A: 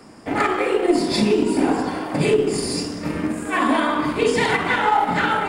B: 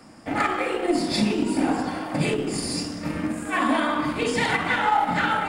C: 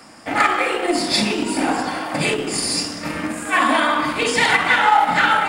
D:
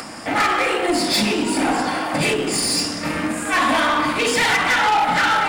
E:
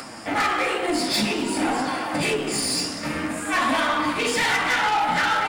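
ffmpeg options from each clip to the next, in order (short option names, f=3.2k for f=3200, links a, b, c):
-af "equalizer=f=410:w=6.2:g=-12,bandreject=f=1k:w=19,volume=-2.5dB"
-af "lowshelf=f=460:g=-11.5,volume=9dB"
-af "acompressor=mode=upward:threshold=-30dB:ratio=2.5,asoftclip=type=tanh:threshold=-17dB,volume=3.5dB"
-af "flanger=delay=7.1:depth=9.4:regen=52:speed=0.53:shape=triangular,aecho=1:1:248:0.0944"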